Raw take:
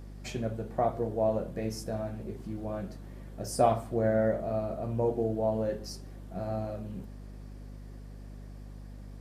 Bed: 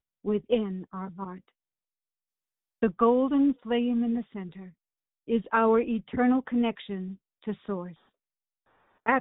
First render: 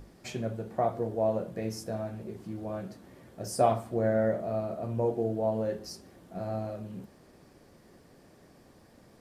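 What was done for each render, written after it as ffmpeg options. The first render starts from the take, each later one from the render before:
-af "bandreject=f=50:t=h:w=6,bandreject=f=100:t=h:w=6,bandreject=f=150:t=h:w=6,bandreject=f=200:t=h:w=6,bandreject=f=250:t=h:w=6,bandreject=f=300:t=h:w=6"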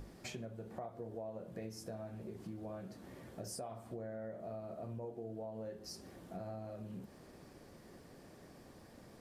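-af "alimiter=limit=0.0631:level=0:latency=1:release=384,acompressor=threshold=0.00631:ratio=4"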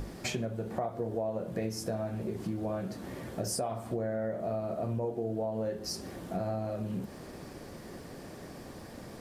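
-af "volume=3.76"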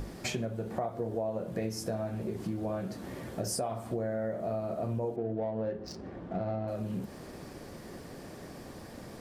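-filter_complex "[0:a]asettb=1/sr,asplit=3[s0][s1][s2];[s0]atrim=end=5.164[s3];[s1]atrim=start=5.16:end=6.68,asetpts=PTS-STARTPTS,afade=t=in:d=0.004:c=qsin,afade=t=out:st=1.516:d=0.004:c=qsin,adynamicsmooth=sensitivity=5.5:basefreq=1700[s4];[s2]atrim=start=6.676[s5];[s3][s4]acrossfade=d=0.004:c1=hsin:c2=qsin[s6];[s6][s5]acrossfade=d=0.004:c1=qsin:c2=hsin"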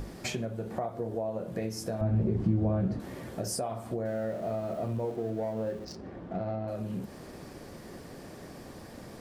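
-filter_complex "[0:a]asettb=1/sr,asplit=3[s0][s1][s2];[s0]atrim=end=2.014[s3];[s1]atrim=start=2.01:end=3,asetpts=PTS-STARTPTS,afade=t=in:d=0.004:c=qsin,afade=t=out:st=0.986:d=0.004:c=qsin,aemphasis=mode=reproduction:type=riaa[s4];[s2]atrim=start=2.996[s5];[s3][s4]acrossfade=d=0.004:c1=hsin:c2=qsin[s6];[s6][s5]acrossfade=d=0.004:c1=qsin:c2=hsin,asettb=1/sr,asplit=3[s7][s8][s9];[s7]atrim=end=4.054[s10];[s8]atrim=start=4.05:end=5.85,asetpts=PTS-STARTPTS,afade=t=in:d=0.004:c=qsin,afade=t=out:st=1.796:d=0.004:c=qsin,aeval=exprs='val(0)+0.5*0.00398*sgn(val(0))':c=same[s11];[s9]atrim=start=5.846[s12];[s10][s11]acrossfade=d=0.004:c1=hsin:c2=qsin[s13];[s13][s12]acrossfade=d=0.004:c1=qsin:c2=hsin"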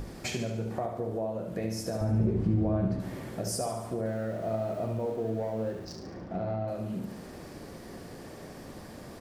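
-af "aecho=1:1:72|144|216|288|360|432|504:0.447|0.246|0.135|0.0743|0.0409|0.0225|0.0124"

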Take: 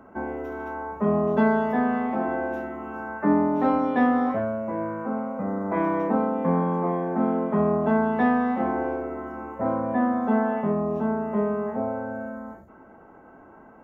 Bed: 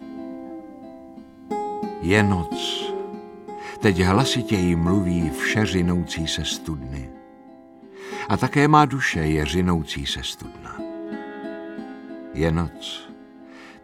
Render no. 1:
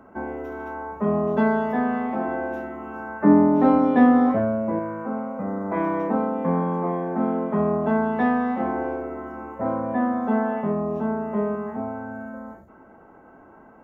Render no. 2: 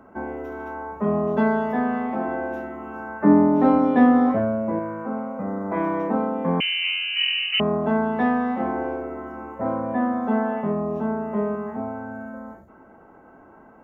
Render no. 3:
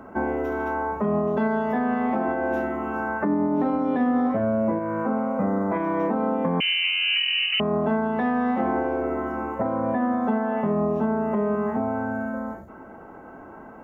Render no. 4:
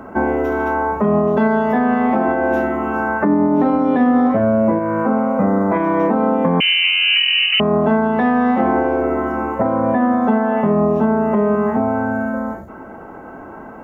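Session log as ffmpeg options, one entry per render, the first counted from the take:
-filter_complex "[0:a]asettb=1/sr,asplit=3[s0][s1][s2];[s0]atrim=end=3.214[s3];[s1]atrim=start=3.21:end=4.79,asetpts=PTS-STARTPTS,afade=t=in:d=0.004:c=qsin,afade=t=out:st=1.576:d=0.004:c=qsin,equalizer=f=200:w=0.36:g=6.5[s4];[s2]atrim=start=4.786[s5];[s3][s4]acrossfade=d=0.004:c1=hsin:c2=qsin[s6];[s6][s5]acrossfade=d=0.004:c1=qsin:c2=hsin,asettb=1/sr,asplit=3[s7][s8][s9];[s7]atrim=end=11.554[s10];[s8]atrim=start=11.55:end=12.34,asetpts=PTS-STARTPTS,afade=t=in:d=0.004:c=qsin,afade=t=out:st=0.786:d=0.004:c=qsin,equalizer=f=530:t=o:w=0.36:g=-12.5[s11];[s9]atrim=start=12.336[s12];[s10][s11]acrossfade=d=0.004:c1=hsin:c2=qsin[s13];[s13][s12]acrossfade=d=0.004:c1=qsin:c2=hsin"
-filter_complex "[0:a]asettb=1/sr,asplit=3[s0][s1][s2];[s0]atrim=end=6.604[s3];[s1]atrim=start=6.6:end=7.6,asetpts=PTS-STARTPTS,afade=t=in:d=0.004:c=qsin,afade=t=out:st=0.996:d=0.004:c=qsin,lowpass=f=2700:t=q:w=0.5098,lowpass=f=2700:t=q:w=0.6013,lowpass=f=2700:t=q:w=0.9,lowpass=f=2700:t=q:w=2.563,afreqshift=-3200[s4];[s2]atrim=start=7.596[s5];[s3][s4]acrossfade=d=0.004:c1=hsin:c2=qsin[s6];[s6][s5]acrossfade=d=0.004:c1=qsin:c2=hsin"
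-filter_complex "[0:a]asplit=2[s0][s1];[s1]acompressor=threshold=0.0447:ratio=6,volume=1.12[s2];[s0][s2]amix=inputs=2:normalize=0,alimiter=limit=0.178:level=0:latency=1:release=215"
-af "volume=2.51"

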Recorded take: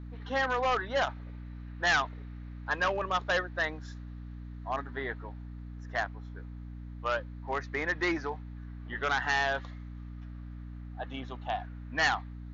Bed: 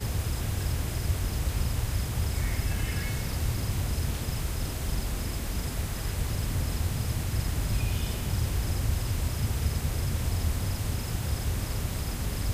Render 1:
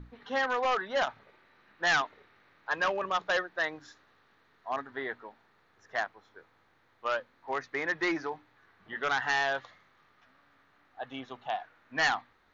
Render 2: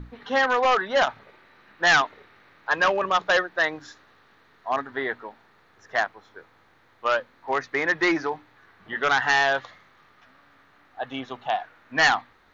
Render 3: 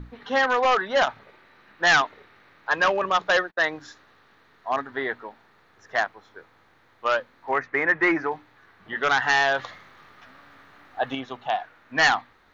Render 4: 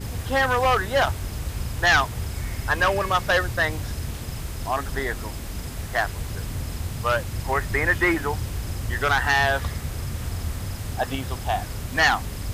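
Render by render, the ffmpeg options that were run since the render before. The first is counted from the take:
-af "bandreject=f=60:t=h:w=6,bandreject=f=120:t=h:w=6,bandreject=f=180:t=h:w=6,bandreject=f=240:t=h:w=6,bandreject=f=300:t=h:w=6"
-af "volume=2.51"
-filter_complex "[0:a]asettb=1/sr,asplit=3[s0][s1][s2];[s0]atrim=end=3.314[s3];[s1]atrim=start=3.31:end=3.75,asetpts=PTS-STARTPTS,afade=t=in:d=0.004:c=qsin,afade=t=out:st=0.436:d=0.004:c=qsin,agate=range=0.0178:threshold=0.00708:ratio=16:release=100:detection=peak[s4];[s2]atrim=start=3.746[s5];[s3][s4]acrossfade=d=0.004:c1=hsin:c2=qsin[s6];[s6][s5]acrossfade=d=0.004:c1=qsin:c2=hsin,asettb=1/sr,asplit=3[s7][s8][s9];[s7]atrim=end=7.514[s10];[s8]atrim=start=7.51:end=8.31,asetpts=PTS-STARTPTS,afade=t=in:d=0.004:c=qsin,afade=t=out:st=0.796:d=0.004:c=qsin,highshelf=f=2900:t=q:w=1.5:g=-10[s11];[s9]atrim=start=8.306[s12];[s10][s11]acrossfade=d=0.004:c1=hsin:c2=qsin[s13];[s13][s12]acrossfade=d=0.004:c1=qsin:c2=hsin,asettb=1/sr,asplit=3[s14][s15][s16];[s14]atrim=end=9.594[s17];[s15]atrim=start=9.59:end=11.15,asetpts=PTS-STARTPTS,afade=t=in:d=0.004:c=qsin,afade=t=out:st=1.556:d=0.004:c=qsin,acontrast=47[s18];[s16]atrim=start=11.146[s19];[s17][s18]acrossfade=d=0.004:c1=hsin:c2=qsin[s20];[s20][s19]acrossfade=d=0.004:c1=qsin:c2=hsin"
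-filter_complex "[1:a]volume=0.891[s0];[0:a][s0]amix=inputs=2:normalize=0"

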